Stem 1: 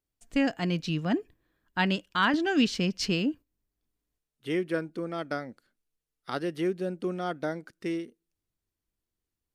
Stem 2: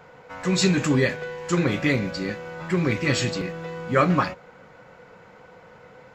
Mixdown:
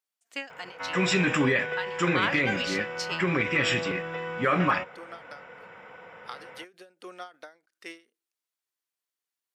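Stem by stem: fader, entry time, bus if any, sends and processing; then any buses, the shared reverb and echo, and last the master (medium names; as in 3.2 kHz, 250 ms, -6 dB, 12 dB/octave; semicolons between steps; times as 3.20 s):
+1.0 dB, 0.00 s, no send, high-pass 840 Hz 12 dB/octave; endings held to a fixed fall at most 190 dB/s
+2.5 dB, 0.50 s, no send, Savitzky-Golay filter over 25 samples; tilt EQ +3 dB/octave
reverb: none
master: peak limiter -14 dBFS, peak gain reduction 9.5 dB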